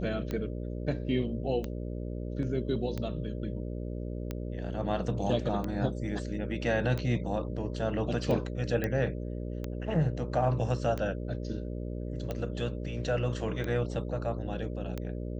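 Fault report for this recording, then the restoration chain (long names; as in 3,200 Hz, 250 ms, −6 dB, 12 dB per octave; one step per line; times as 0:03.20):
mains buzz 60 Hz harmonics 10 −36 dBFS
scratch tick 45 rpm −21 dBFS
0:08.84: click −18 dBFS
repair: click removal
hum removal 60 Hz, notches 10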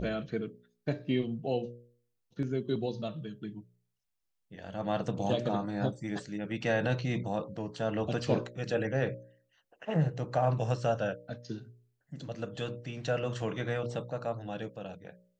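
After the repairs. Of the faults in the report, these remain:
none of them is left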